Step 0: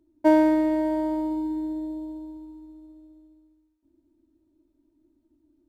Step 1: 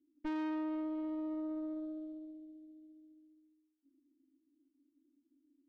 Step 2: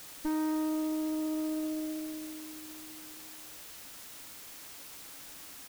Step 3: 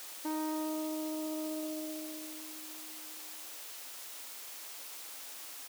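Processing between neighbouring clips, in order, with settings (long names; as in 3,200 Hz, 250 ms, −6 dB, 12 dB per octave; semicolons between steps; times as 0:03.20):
formant filter i; notch filter 2,400 Hz, Q 6.6; tube saturation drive 38 dB, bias 0.75; level +2.5 dB
comb filter 3.4 ms, depth 98%; background noise white −48 dBFS
high-pass filter 460 Hz 12 dB per octave; dynamic equaliser 1,600 Hz, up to −6 dB, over −59 dBFS, Q 1.7; level +2 dB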